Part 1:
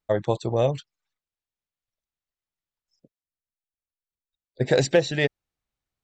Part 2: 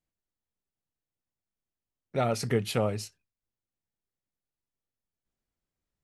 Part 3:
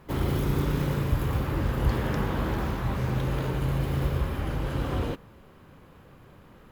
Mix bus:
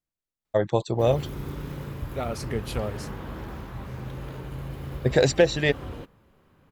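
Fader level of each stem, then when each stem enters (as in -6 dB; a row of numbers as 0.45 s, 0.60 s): +0.5 dB, -3.5 dB, -8.5 dB; 0.45 s, 0.00 s, 0.90 s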